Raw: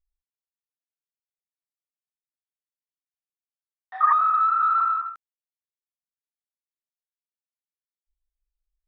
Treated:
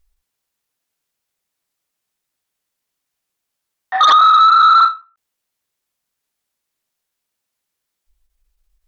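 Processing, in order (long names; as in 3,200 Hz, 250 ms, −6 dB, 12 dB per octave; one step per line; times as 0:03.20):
in parallel at +0.5 dB: downward compressor, threshold −28 dBFS, peak gain reduction 13 dB
on the sum: sine wavefolder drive 8 dB, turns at −6.5 dBFS
every ending faded ahead of time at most 210 dB per second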